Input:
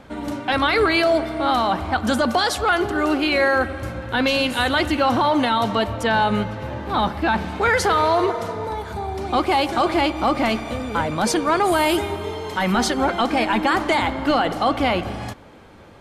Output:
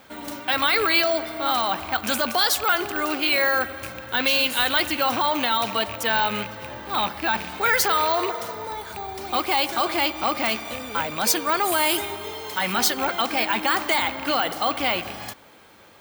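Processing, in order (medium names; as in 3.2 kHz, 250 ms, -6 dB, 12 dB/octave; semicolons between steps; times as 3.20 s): rattle on loud lows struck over -25 dBFS, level -22 dBFS; careless resampling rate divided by 2×, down none, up hold; tilt EQ +3 dB/octave; trim -3.5 dB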